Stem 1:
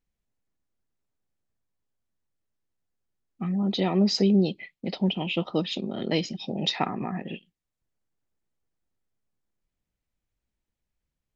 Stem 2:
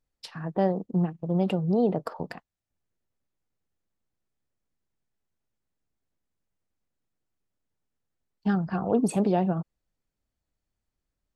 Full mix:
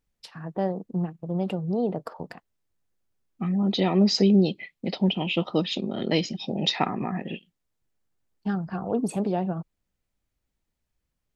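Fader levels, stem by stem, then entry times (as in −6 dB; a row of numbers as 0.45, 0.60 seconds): +2.0, −2.5 decibels; 0.00, 0.00 seconds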